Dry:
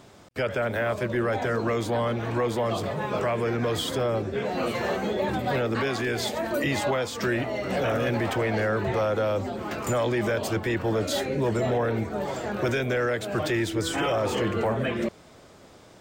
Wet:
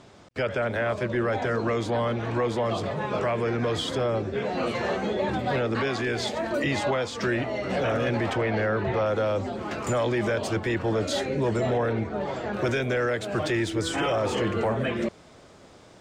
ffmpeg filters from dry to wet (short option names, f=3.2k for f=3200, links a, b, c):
-af "asetnsamples=n=441:p=0,asendcmd='8.37 lowpass f 4200;9.06 lowpass f 8300;11.93 lowpass f 4300;12.53 lowpass f 9500',lowpass=7k"